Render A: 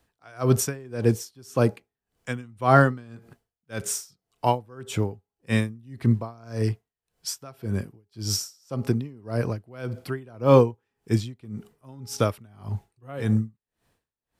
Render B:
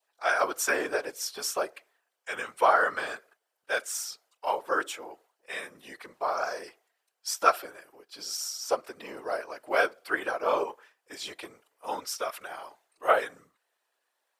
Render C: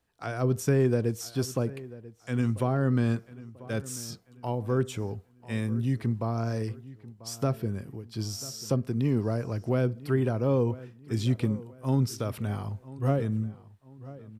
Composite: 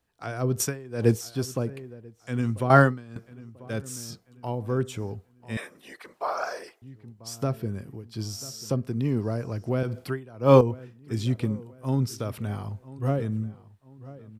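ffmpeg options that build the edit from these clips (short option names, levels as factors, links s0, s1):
-filter_complex "[0:a]asplit=3[s0][s1][s2];[2:a]asplit=5[s3][s4][s5][s6][s7];[s3]atrim=end=0.602[s8];[s0]atrim=start=0.598:end=1.212[s9];[s4]atrim=start=1.208:end=2.702[s10];[s1]atrim=start=2.698:end=3.162[s11];[s5]atrim=start=3.158:end=5.572[s12];[1:a]atrim=start=5.568:end=6.822[s13];[s6]atrim=start=6.818:end=9.832[s14];[s2]atrim=start=9.828:end=10.612[s15];[s7]atrim=start=10.608[s16];[s8][s9]acrossfade=d=0.004:c1=hsin:c2=hsin[s17];[s17][s10]acrossfade=d=0.004:c1=hsin:c2=hsin[s18];[s18][s11]acrossfade=d=0.004:c1=hsin:c2=hsin[s19];[s19][s12]acrossfade=d=0.004:c1=hsin:c2=hsin[s20];[s20][s13]acrossfade=d=0.004:c1=hsin:c2=hsin[s21];[s21][s14]acrossfade=d=0.004:c1=hsin:c2=hsin[s22];[s22][s15]acrossfade=d=0.004:c1=hsin:c2=hsin[s23];[s23][s16]acrossfade=d=0.004:c1=hsin:c2=hsin"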